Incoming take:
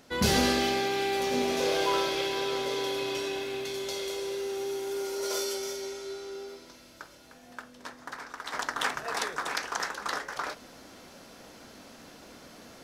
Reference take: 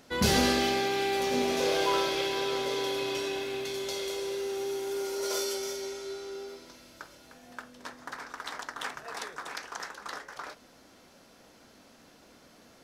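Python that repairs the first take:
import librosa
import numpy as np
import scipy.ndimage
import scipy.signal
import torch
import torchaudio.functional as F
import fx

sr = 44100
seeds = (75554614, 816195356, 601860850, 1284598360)

y = fx.fix_level(x, sr, at_s=8.53, step_db=-7.0)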